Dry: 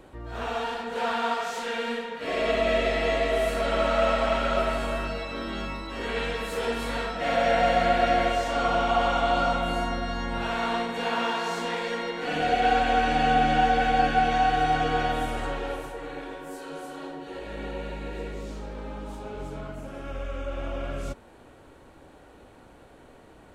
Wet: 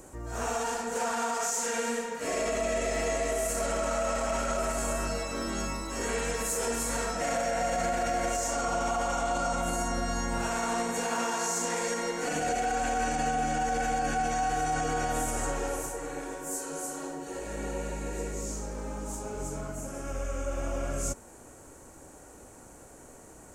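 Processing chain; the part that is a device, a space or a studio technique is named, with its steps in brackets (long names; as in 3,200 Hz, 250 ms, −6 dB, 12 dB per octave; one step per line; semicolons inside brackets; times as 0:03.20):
over-bright horn tweeter (high shelf with overshoot 5,000 Hz +12 dB, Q 3; brickwall limiter −21 dBFS, peak gain reduction 10.5 dB)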